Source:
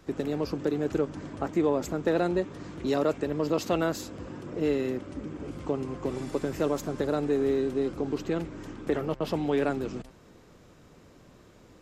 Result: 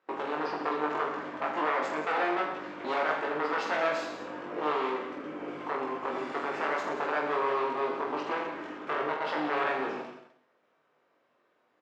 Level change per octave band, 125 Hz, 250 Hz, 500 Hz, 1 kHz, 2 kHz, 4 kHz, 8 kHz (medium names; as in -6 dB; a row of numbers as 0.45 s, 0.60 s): -18.0 dB, -8.5 dB, -4.0 dB, +8.0 dB, +8.0 dB, +0.5 dB, no reading